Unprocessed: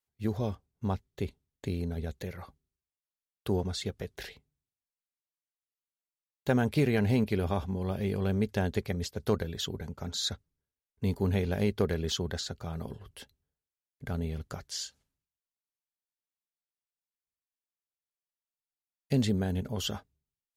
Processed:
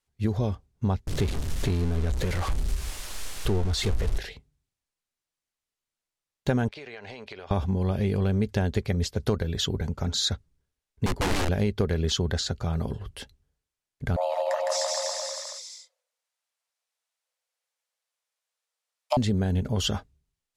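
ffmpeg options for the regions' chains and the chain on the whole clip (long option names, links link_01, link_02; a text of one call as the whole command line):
ffmpeg -i in.wav -filter_complex "[0:a]asettb=1/sr,asplit=3[link_01][link_02][link_03];[link_01]atrim=end=1.074[link_04];[link_02]atrim=start=1.07:end=4.18,asetpts=PTS-STARTPTS,afade=type=in:duration=0.004:curve=qsin,afade=type=out:start_time=3.106:duration=0.004:curve=qsin,aeval=exprs='val(0)+0.5*0.0211*sgn(val(0))':channel_layout=same,asubboost=boost=8:cutoff=52[link_05];[link_03]atrim=start=4.176[link_06];[link_04][link_05]acrossfade=duration=0.004:curve1=hsin:curve2=qsin[link_07];[link_07][link_06]acrossfade=duration=0.004:curve1=qsin:curve2=hsin,asettb=1/sr,asplit=3[link_08][link_09][link_10];[link_08]atrim=end=6.684[link_11];[link_09]atrim=start=6.68:end=7.51,asetpts=PTS-STARTPTS,afade=type=in:duration=0.004:curve=qsin,afade=type=out:start_time=0.826:duration=0.004:curve=qsin,acrossover=split=490 6400:gain=0.0631 1 0.0708[link_12][link_13][link_14];[link_12][link_13][link_14]amix=inputs=3:normalize=0,acompressor=threshold=-44dB:ratio=20:attack=3.2:release=140:knee=1:detection=peak[link_15];[link_10]atrim=start=7.506[link_16];[link_11][link_15]acrossfade=duration=0.004:curve1=hsin:curve2=qsin[link_17];[link_17][link_16]acrossfade=duration=0.004:curve1=qsin:curve2=hsin,asettb=1/sr,asplit=3[link_18][link_19][link_20];[link_18]atrim=end=11.064[link_21];[link_19]atrim=start=11.06:end=11.49,asetpts=PTS-STARTPTS,afade=type=in:duration=0.004:curve=qsin,afade=type=out:start_time=0.426:duration=0.004:curve=qsin,highshelf=frequency=5400:gain=-7.5,aeval=exprs='(mod(21.1*val(0)+1,2)-1)/21.1':channel_layout=same[link_22];[link_20]atrim=start=11.486[link_23];[link_21][link_22]acrossfade=duration=0.004:curve1=hsin:curve2=qsin[link_24];[link_24][link_23]acrossfade=duration=0.004:curve1=qsin:curve2=hsin,asettb=1/sr,asplit=3[link_25][link_26][link_27];[link_25]atrim=end=14.164[link_28];[link_26]atrim=start=14.16:end=19.17,asetpts=PTS-STARTPTS,afade=type=in:duration=0.004:curve=qsin,afade=type=out:start_time=5.006:duration=0.004:curve=qsin,afreqshift=460,aecho=1:1:160|304|433.6|550.2|655.2|749.7|834.7|911.3|980.1:0.794|0.631|0.501|0.398|0.316|0.251|0.2|0.158|0.126,atrim=end_sample=220941[link_29];[link_27]atrim=start=19.166[link_30];[link_28][link_29]acrossfade=duration=0.004:curve1=hsin:curve2=qsin[link_31];[link_31][link_30]acrossfade=duration=0.004:curve1=qsin:curve2=hsin,lowpass=10000,lowshelf=frequency=66:gain=12,acompressor=threshold=-30dB:ratio=3,volume=7.5dB" out.wav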